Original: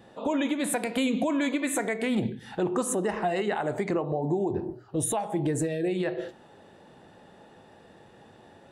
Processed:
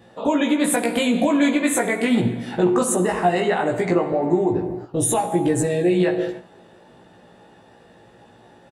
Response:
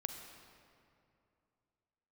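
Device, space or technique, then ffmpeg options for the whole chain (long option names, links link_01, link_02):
keyed gated reverb: -filter_complex "[0:a]asplit=3[link_01][link_02][link_03];[1:a]atrim=start_sample=2205[link_04];[link_02][link_04]afir=irnorm=-1:irlink=0[link_05];[link_03]apad=whole_len=384115[link_06];[link_05][link_06]sidechaingate=range=-15dB:threshold=-46dB:ratio=16:detection=peak,volume=1dB[link_07];[link_01][link_07]amix=inputs=2:normalize=0,asplit=2[link_08][link_09];[link_09]adelay=17,volume=-2dB[link_10];[link_08][link_10]amix=inputs=2:normalize=0"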